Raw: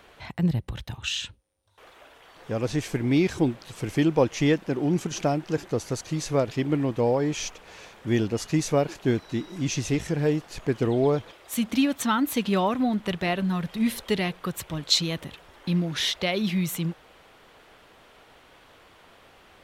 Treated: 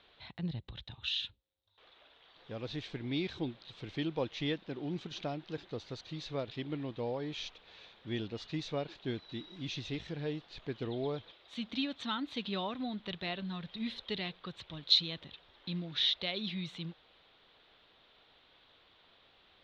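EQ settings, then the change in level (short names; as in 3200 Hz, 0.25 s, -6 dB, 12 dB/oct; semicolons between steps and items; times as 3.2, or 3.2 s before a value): ladder low-pass 4100 Hz, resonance 70%; -2.5 dB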